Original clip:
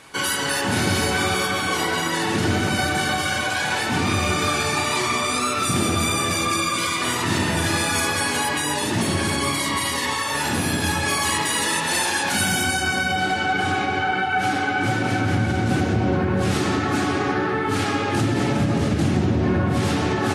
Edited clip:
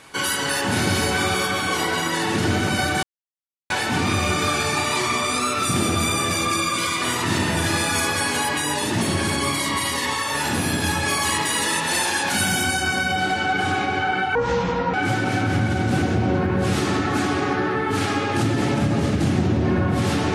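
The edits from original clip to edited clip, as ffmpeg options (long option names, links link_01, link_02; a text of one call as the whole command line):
ffmpeg -i in.wav -filter_complex "[0:a]asplit=5[link_01][link_02][link_03][link_04][link_05];[link_01]atrim=end=3.03,asetpts=PTS-STARTPTS,afade=type=out:start_time=3.026:duration=0.004:curve=hsin[link_06];[link_02]atrim=start=3.03:end=3.7,asetpts=PTS-STARTPTS,volume=0[link_07];[link_03]atrim=start=3.7:end=14.354,asetpts=PTS-STARTPTS,afade=type=in:duration=0.004:curve=hsin[link_08];[link_04]atrim=start=14.35:end=14.72,asetpts=PTS-STARTPTS,asetrate=27783,aresample=44100[link_09];[link_05]atrim=start=14.716[link_10];[link_06][link_07][link_08]concat=n=3:v=0:a=1[link_11];[link_11][link_09]acrossfade=duration=0.004:curve1=hsin:curve2=hsin[link_12];[link_12][link_10]acrossfade=duration=0.004:curve1=hsin:curve2=hsin" out.wav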